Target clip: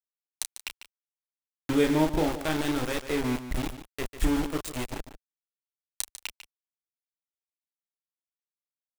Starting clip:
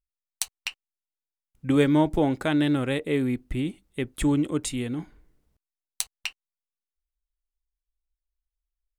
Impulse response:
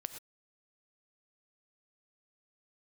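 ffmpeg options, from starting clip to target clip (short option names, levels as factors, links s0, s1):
-filter_complex "[0:a]asplit=2[s0][s1];[s1]adelay=32,volume=0.596[s2];[s0][s2]amix=inputs=2:normalize=0,asplit=2[s3][s4];[s4]aecho=0:1:76:0.106[s5];[s3][s5]amix=inputs=2:normalize=0,aeval=exprs='val(0)*gte(abs(val(0)),0.0631)':c=same,asplit=2[s6][s7];[s7]aecho=0:1:147:0.251[s8];[s6][s8]amix=inputs=2:normalize=0,asubboost=boost=6.5:cutoff=54,volume=0.631"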